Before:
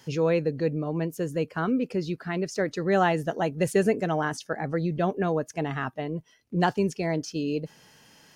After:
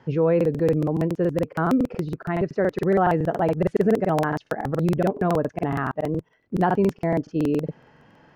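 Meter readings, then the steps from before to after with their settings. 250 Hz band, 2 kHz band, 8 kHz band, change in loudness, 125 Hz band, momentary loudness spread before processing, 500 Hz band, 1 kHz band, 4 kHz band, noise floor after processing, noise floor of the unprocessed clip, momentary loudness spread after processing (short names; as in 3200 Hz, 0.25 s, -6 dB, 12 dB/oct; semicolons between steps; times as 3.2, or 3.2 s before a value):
+5.0 dB, 0.0 dB, n/a, +4.0 dB, +5.0 dB, 8 LU, +4.0 dB, +4.0 dB, -5.5 dB, -62 dBFS, -61 dBFS, 7 LU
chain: LPF 1400 Hz 12 dB/oct; in parallel at +2 dB: limiter -20.5 dBFS, peak gain reduction 8.5 dB; on the sum: crackling interface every 0.14 s, samples 2048, repeat, from 0.36; gain -1 dB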